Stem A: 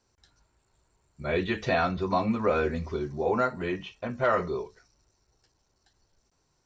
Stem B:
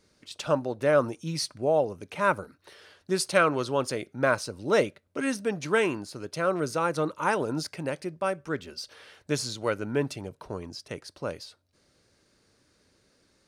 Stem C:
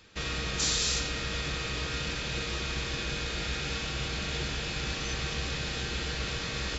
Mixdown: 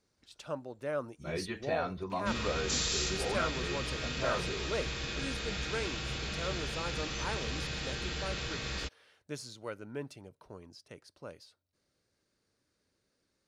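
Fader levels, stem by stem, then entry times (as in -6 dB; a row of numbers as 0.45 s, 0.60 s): -10.0 dB, -13.0 dB, -4.0 dB; 0.00 s, 0.00 s, 2.10 s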